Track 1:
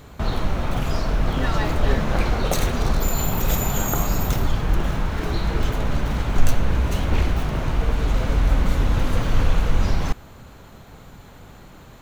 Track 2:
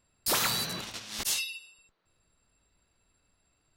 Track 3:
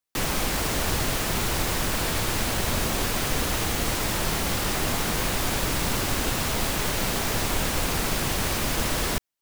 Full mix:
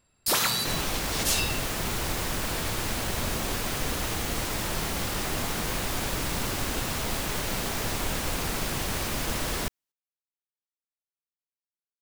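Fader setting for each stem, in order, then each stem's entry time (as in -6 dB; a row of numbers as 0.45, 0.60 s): off, +3.0 dB, -4.0 dB; off, 0.00 s, 0.50 s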